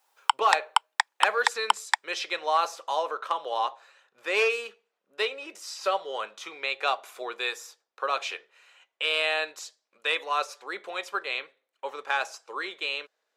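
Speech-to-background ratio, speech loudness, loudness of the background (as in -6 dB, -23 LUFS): -2.0 dB, -29.5 LUFS, -27.5 LUFS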